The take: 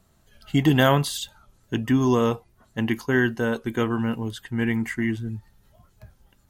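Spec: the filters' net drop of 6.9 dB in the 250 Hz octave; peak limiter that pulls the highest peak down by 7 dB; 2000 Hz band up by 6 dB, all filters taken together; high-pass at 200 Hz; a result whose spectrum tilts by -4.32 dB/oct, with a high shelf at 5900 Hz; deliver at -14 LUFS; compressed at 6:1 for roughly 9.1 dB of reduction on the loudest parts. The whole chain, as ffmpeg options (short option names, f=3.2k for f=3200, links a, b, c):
-af "highpass=200,equalizer=f=250:t=o:g=-6.5,equalizer=f=2k:t=o:g=8.5,highshelf=f=5.9k:g=-7,acompressor=threshold=-23dB:ratio=6,volume=17.5dB,alimiter=limit=-0.5dB:level=0:latency=1"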